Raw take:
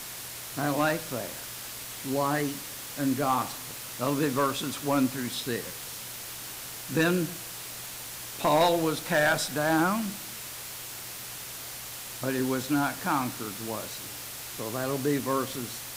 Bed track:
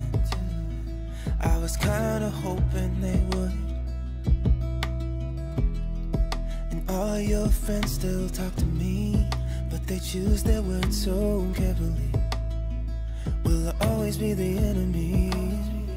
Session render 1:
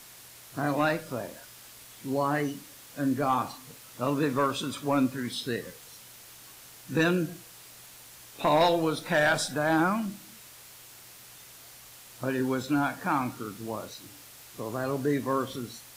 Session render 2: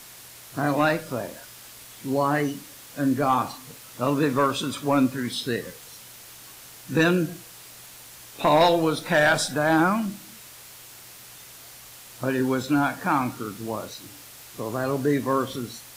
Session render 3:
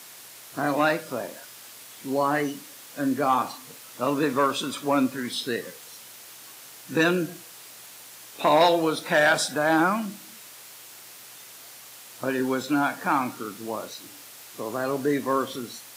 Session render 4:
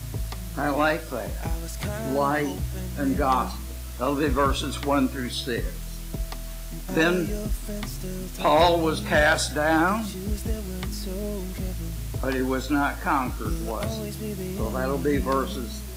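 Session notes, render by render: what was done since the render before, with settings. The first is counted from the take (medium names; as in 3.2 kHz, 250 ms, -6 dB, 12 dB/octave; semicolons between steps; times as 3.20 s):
noise print and reduce 10 dB
trim +4.5 dB
Bessel high-pass 240 Hz, order 2
add bed track -6 dB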